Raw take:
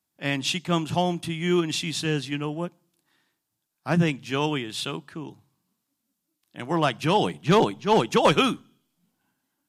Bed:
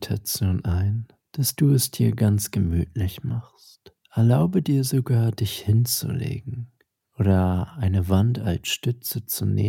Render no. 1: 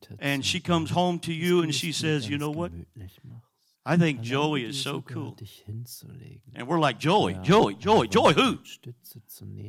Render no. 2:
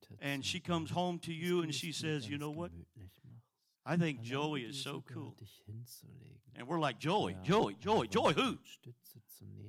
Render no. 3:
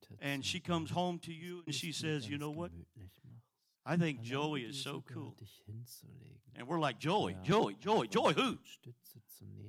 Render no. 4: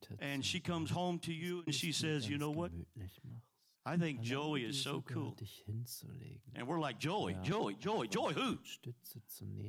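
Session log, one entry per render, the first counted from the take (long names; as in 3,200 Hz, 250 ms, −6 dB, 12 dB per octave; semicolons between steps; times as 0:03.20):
mix in bed −18 dB
level −11.5 dB
0:01.07–0:01.67: fade out; 0:07.52–0:08.53: high-pass filter 130 Hz 24 dB per octave
in parallel at −1 dB: downward compressor, threshold −42 dBFS, peak gain reduction 16 dB; on the sum: brickwall limiter −27.5 dBFS, peak gain reduction 11 dB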